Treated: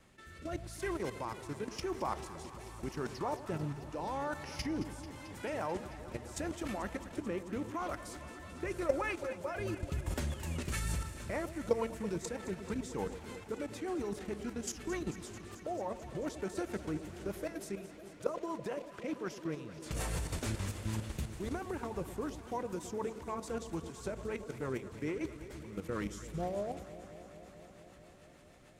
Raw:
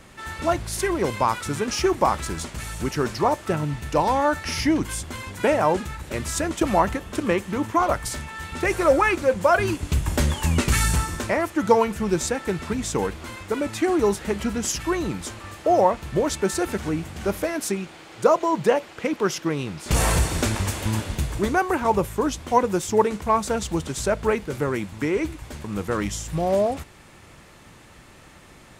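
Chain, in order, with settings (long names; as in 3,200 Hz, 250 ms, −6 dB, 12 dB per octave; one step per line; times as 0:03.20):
output level in coarse steps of 13 dB
rotating-speaker cabinet horn 0.85 Hz, later 6.7 Hz, at 0:10.00
delay that swaps between a low-pass and a high-pass 110 ms, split 860 Hz, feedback 89%, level −12.5 dB
level −8.5 dB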